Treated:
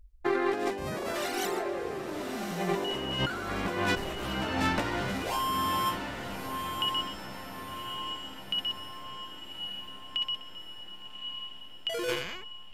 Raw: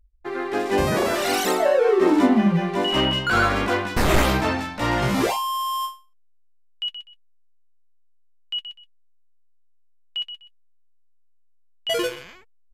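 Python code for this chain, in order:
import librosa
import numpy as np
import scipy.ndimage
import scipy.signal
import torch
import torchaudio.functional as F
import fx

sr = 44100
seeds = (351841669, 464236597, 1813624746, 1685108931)

y = fx.over_compress(x, sr, threshold_db=-30.0, ratio=-1.0)
y = fx.echo_diffused(y, sr, ms=1166, feedback_pct=56, wet_db=-6)
y = y * librosa.db_to_amplitude(-3.0)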